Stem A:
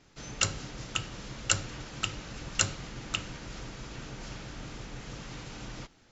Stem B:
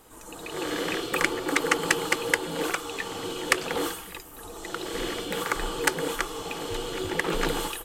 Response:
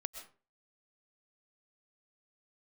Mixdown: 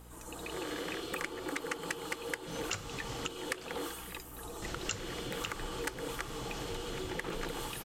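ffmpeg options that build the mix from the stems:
-filter_complex "[0:a]adelay=2300,volume=1.12,asplit=3[s0][s1][s2];[s0]atrim=end=3.28,asetpts=PTS-STARTPTS,afade=t=out:st=3.276:d=0.004:c=hsin[s3];[s1]atrim=start=3.28:end=4.62,asetpts=PTS-STARTPTS,volume=0[s4];[s2]atrim=start=4.62,asetpts=PTS-STARTPTS,afade=t=in:d=0.004:c=hsin[s5];[s3][s4][s5]concat=n=3:v=0:a=1[s6];[1:a]aeval=exprs='val(0)+0.00355*(sin(2*PI*60*n/s)+sin(2*PI*2*60*n/s)/2+sin(2*PI*3*60*n/s)/3+sin(2*PI*4*60*n/s)/4+sin(2*PI*5*60*n/s)/5)':c=same,volume=0.668[s7];[s6][s7]amix=inputs=2:normalize=0,acompressor=threshold=0.0141:ratio=3"

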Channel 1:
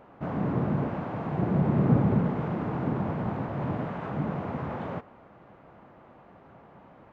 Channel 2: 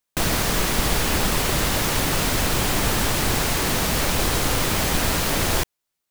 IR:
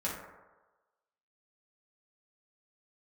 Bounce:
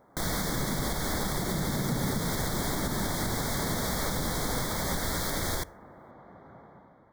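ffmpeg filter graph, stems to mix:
-filter_complex "[0:a]dynaudnorm=f=140:g=7:m=2.82,volume=0.447[s0];[1:a]volume=0.668,asplit=2[s1][s2];[s2]volume=0.075[s3];[2:a]atrim=start_sample=2205[s4];[s3][s4]afir=irnorm=-1:irlink=0[s5];[s0][s1][s5]amix=inputs=3:normalize=0,asuperstop=centerf=2700:order=12:qfactor=2.7,alimiter=limit=0.1:level=0:latency=1:release=286"

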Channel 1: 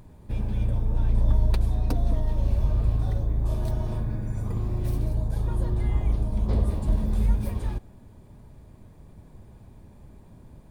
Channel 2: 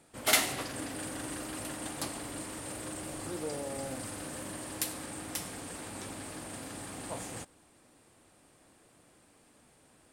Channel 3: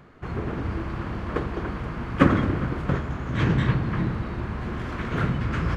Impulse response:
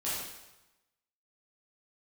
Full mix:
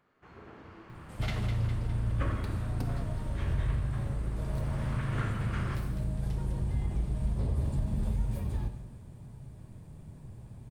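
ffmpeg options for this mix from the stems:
-filter_complex "[0:a]equalizer=f=130:w=1.5:g=10,adelay=900,volume=0.562,asplit=2[s0][s1];[s1]volume=0.188[s2];[1:a]acrossover=split=4600[s3][s4];[s4]acompressor=threshold=0.00355:ratio=4:attack=1:release=60[s5];[s3][s5]amix=inputs=2:normalize=0,adelay=950,volume=0.398,asplit=2[s6][s7];[s7]volume=0.237[s8];[2:a]lowshelf=f=260:g=-12,volume=0.251,afade=t=in:st=4.31:d=0.58:silence=0.421697,asplit=2[s9][s10];[s10]volume=0.562[s11];[s0][s6]amix=inputs=2:normalize=0,acompressor=threshold=0.0355:ratio=6,volume=1[s12];[3:a]atrim=start_sample=2205[s13];[s2][s11]amix=inputs=2:normalize=0[s14];[s14][s13]afir=irnorm=-1:irlink=0[s15];[s8]aecho=0:1:204|408|612|816|1020|1224|1428|1632:1|0.55|0.303|0.166|0.0915|0.0503|0.0277|0.0152[s16];[s9][s12][s15][s16]amix=inputs=4:normalize=0"

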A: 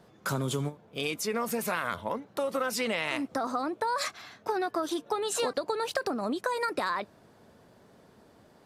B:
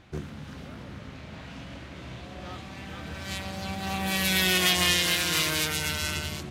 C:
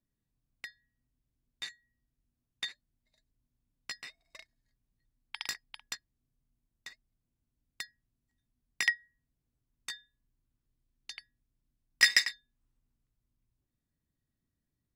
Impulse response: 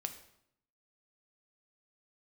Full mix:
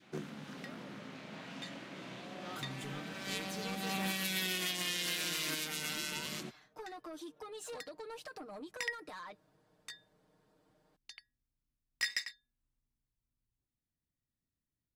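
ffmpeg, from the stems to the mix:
-filter_complex "[0:a]aecho=1:1:6.5:0.87,asoftclip=type=tanh:threshold=0.0631,adelay=2300,volume=0.158[s0];[1:a]highpass=f=170:w=0.5412,highpass=f=170:w=1.3066,volume=0.668[s1];[2:a]volume=0.422[s2];[s0][s1][s2]amix=inputs=3:normalize=0,adynamicequalizer=threshold=0.00447:dfrequency=840:dqfactor=0.76:tfrequency=840:tqfactor=0.76:attack=5:release=100:ratio=0.375:range=2.5:mode=cutabove:tftype=bell,alimiter=limit=0.075:level=0:latency=1:release=256"

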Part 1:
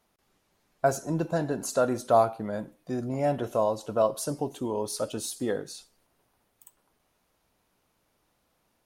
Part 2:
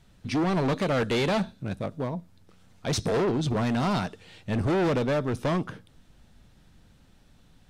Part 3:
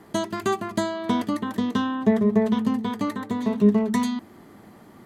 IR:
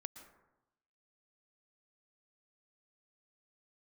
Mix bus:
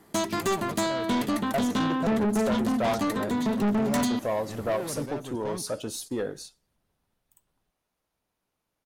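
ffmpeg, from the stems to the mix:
-filter_complex "[0:a]adynamicequalizer=threshold=0.002:dfrequency=8800:dqfactor=1.7:tfrequency=8800:tqfactor=1.7:attack=5:release=100:ratio=0.375:range=2.5:mode=cutabove:tftype=bell,adelay=700,volume=1.06[s0];[1:a]volume=0.266[s1];[2:a]highshelf=f=4100:g=9.5,volume=1.33[s2];[s0][s1][s2]amix=inputs=3:normalize=0,agate=range=0.316:threshold=0.00891:ratio=16:detection=peak,asoftclip=type=tanh:threshold=0.0841"

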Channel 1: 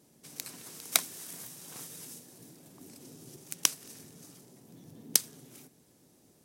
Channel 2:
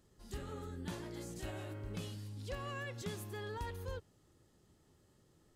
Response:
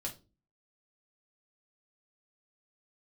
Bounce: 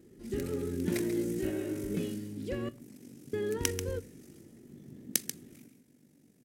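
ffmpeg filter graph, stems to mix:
-filter_complex "[0:a]aeval=exprs='val(0)*sin(2*PI*24*n/s)':c=same,volume=0.531,asplit=3[s0][s1][s2];[s1]volume=0.15[s3];[s2]volume=0.376[s4];[1:a]equalizer=f=370:t=o:w=1:g=12,volume=0.794,asplit=3[s5][s6][s7];[s5]atrim=end=2.69,asetpts=PTS-STARTPTS,afade=t=out:st=2.686:d=0.004:c=hsin[s8];[s6]atrim=start=2.69:end=3.33,asetpts=PTS-STARTPTS,volume=0[s9];[s7]atrim=start=3.33,asetpts=PTS-STARTPTS,afade=t=in:d=0.004:c=hsin[s10];[s8][s9][s10]concat=n=3:v=0:a=1,asplit=2[s11][s12];[s12]volume=0.335[s13];[2:a]atrim=start_sample=2205[s14];[s3][s13]amix=inputs=2:normalize=0[s15];[s15][s14]afir=irnorm=-1:irlink=0[s16];[s4]aecho=0:1:138:1[s17];[s0][s11][s16][s17]amix=inputs=4:normalize=0,equalizer=f=125:t=o:w=1:g=5,equalizer=f=250:t=o:w=1:g=11,equalizer=f=1000:t=o:w=1:g=-7,equalizer=f=2000:t=o:w=1:g=8,equalizer=f=4000:t=o:w=1:g=-3"

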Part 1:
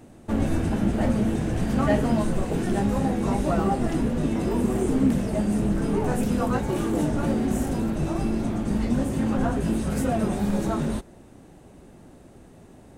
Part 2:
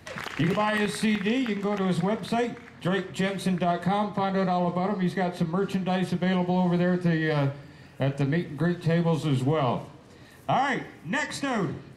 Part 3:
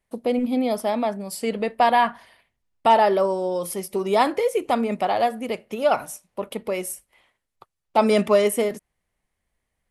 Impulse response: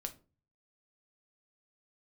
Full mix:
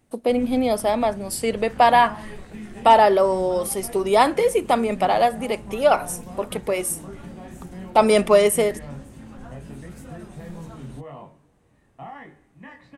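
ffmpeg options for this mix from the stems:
-filter_complex "[0:a]equalizer=f=360:w=0.5:g=-6.5,volume=0.224[s0];[1:a]lowpass=2200,flanger=delay=19.5:depth=4.4:speed=0.92,adelay=1500,volume=0.266[s1];[2:a]highpass=230,equalizer=f=8900:t=o:w=0.24:g=7,volume=1.41[s2];[s0][s1][s2]amix=inputs=3:normalize=0"

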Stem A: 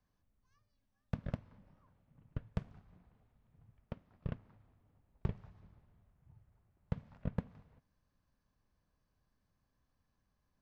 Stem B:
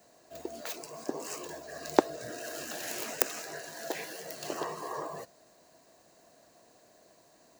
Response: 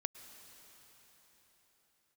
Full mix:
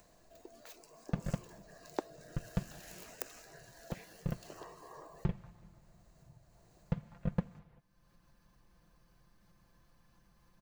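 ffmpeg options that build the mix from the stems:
-filter_complex "[0:a]aecho=1:1:5.8:0.65,volume=1.26[s0];[1:a]volume=0.188[s1];[s0][s1]amix=inputs=2:normalize=0,acompressor=mode=upward:threshold=0.00178:ratio=2.5"

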